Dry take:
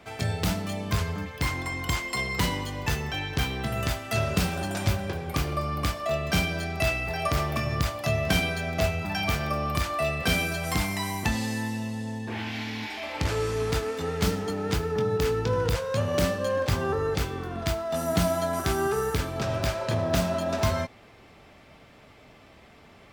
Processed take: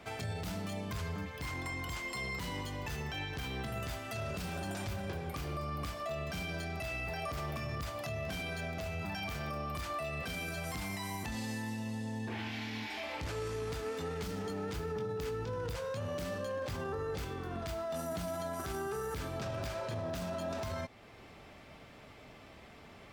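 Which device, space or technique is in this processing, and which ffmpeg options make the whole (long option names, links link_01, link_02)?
stacked limiters: -af "alimiter=limit=-18.5dB:level=0:latency=1:release=125,alimiter=limit=-23.5dB:level=0:latency=1:release=14,alimiter=level_in=5dB:limit=-24dB:level=0:latency=1:release=361,volume=-5dB,volume=-1.5dB"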